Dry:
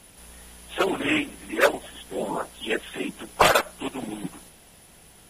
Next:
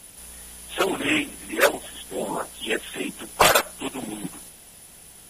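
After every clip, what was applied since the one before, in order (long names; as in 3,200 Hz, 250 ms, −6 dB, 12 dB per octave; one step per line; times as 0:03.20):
high-shelf EQ 4,600 Hz +8.5 dB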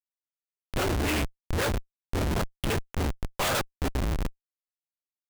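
sub-octave generator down 2 octaves, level +2 dB
comparator with hysteresis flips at −25 dBFS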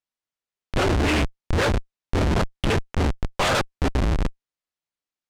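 high-frequency loss of the air 62 metres
level +6.5 dB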